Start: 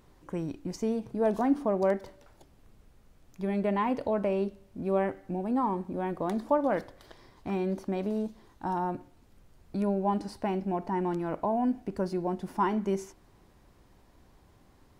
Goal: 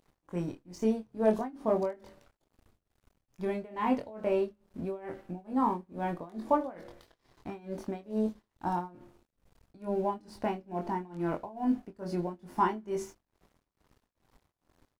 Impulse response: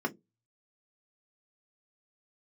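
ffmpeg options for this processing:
-filter_complex "[0:a]asplit=2[a][b];[b]adelay=23,volume=-4dB[c];[a][c]amix=inputs=2:normalize=0,bandreject=f=69.63:t=h:w=4,bandreject=f=139.26:t=h:w=4,bandreject=f=208.89:t=h:w=4,bandreject=f=278.52:t=h:w=4,bandreject=f=348.15:t=h:w=4,bandreject=f=417.78:t=h:w=4,bandreject=f=487.41:t=h:w=4,bandreject=f=557.04:t=h:w=4,bandreject=f=626.67:t=h:w=4,aeval=exprs='sgn(val(0))*max(abs(val(0))-0.00141,0)':c=same,tremolo=f=2.3:d=0.93"

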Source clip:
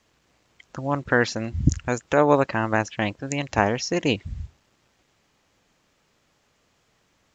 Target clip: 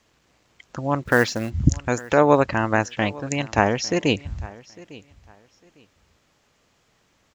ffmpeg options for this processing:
-filter_complex "[0:a]asplit=3[a][b][c];[a]afade=t=out:st=1.02:d=0.02[d];[b]acrusher=bits=5:mode=log:mix=0:aa=0.000001,afade=t=in:st=1.02:d=0.02,afade=t=out:st=1.49:d=0.02[e];[c]afade=t=in:st=1.49:d=0.02[f];[d][e][f]amix=inputs=3:normalize=0,aecho=1:1:853|1706:0.0891|0.0205,volume=2dB"

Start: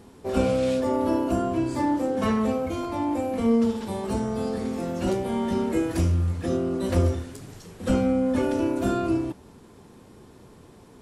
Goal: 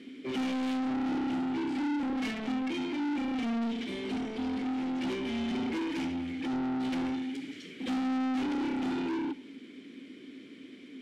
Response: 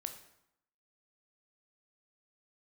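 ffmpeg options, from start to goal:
-filter_complex "[0:a]asplit=3[a][b][c];[a]bandpass=f=270:t=q:w=8,volume=0dB[d];[b]bandpass=f=2.29k:t=q:w=8,volume=-6dB[e];[c]bandpass=f=3.01k:t=q:w=8,volume=-9dB[f];[d][e][f]amix=inputs=3:normalize=0,asplit=2[g][h];[h]highpass=f=720:p=1,volume=32dB,asoftclip=type=tanh:threshold=-20dB[i];[g][i]amix=inputs=2:normalize=0,lowpass=f=7.2k:p=1,volume=-6dB,bandreject=f=54.33:t=h:w=4,bandreject=f=108.66:t=h:w=4,bandreject=f=162.99:t=h:w=4,bandreject=f=217.32:t=h:w=4,asplit=2[j][k];[1:a]atrim=start_sample=2205[l];[k][l]afir=irnorm=-1:irlink=0,volume=-11.5dB[m];[j][m]amix=inputs=2:normalize=0,volume=-7dB"

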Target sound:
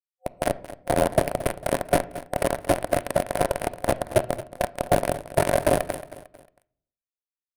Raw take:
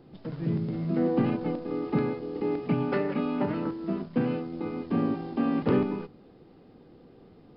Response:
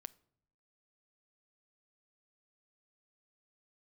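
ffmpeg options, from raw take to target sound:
-filter_complex "[0:a]acrossover=split=290|1200[a][b][c];[a]acompressor=threshold=-39dB:ratio=4[d];[b]acompressor=threshold=-42dB:ratio=4[e];[c]acompressor=threshold=-53dB:ratio=4[f];[d][e][f]amix=inputs=3:normalize=0,acrusher=bits=4:mix=0:aa=0.000001,aeval=exprs='val(0)*sin(2*PI*130*n/s)':c=same,asplit=2[g][h];[1:a]atrim=start_sample=2205,lowpass=2.5k[i];[h][i]afir=irnorm=-1:irlink=0,volume=7.5dB[j];[g][j]amix=inputs=2:normalize=0,dynaudnorm=f=110:g=7:m=14.5dB,equalizer=f=1.2k:w=5.8:g=-6.5,asoftclip=type=tanh:threshold=-14.5dB,superequalizer=8b=3.16:16b=3.55,aecho=1:1:225|450|675:0.178|0.0676|0.0257,volume=2.5dB"

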